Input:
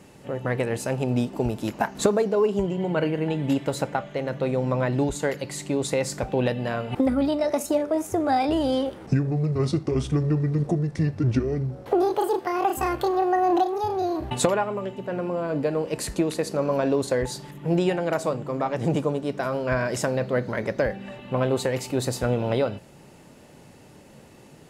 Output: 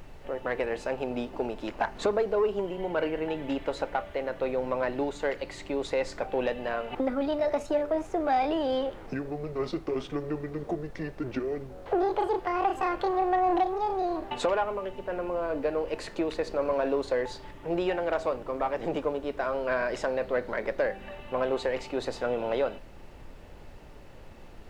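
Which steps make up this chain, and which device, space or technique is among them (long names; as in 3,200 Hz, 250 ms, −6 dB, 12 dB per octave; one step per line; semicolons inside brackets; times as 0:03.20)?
aircraft cabin announcement (band-pass filter 380–3,400 Hz; soft clipping −15.5 dBFS, distortion −21 dB; brown noise bed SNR 16 dB)
level −1 dB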